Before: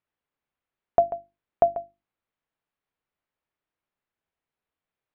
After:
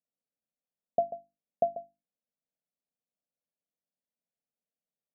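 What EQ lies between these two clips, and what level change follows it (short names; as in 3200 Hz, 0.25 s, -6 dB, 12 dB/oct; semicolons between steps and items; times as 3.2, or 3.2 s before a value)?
running mean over 42 samples; HPF 210 Hz 6 dB/oct; fixed phaser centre 360 Hz, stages 6; 0.0 dB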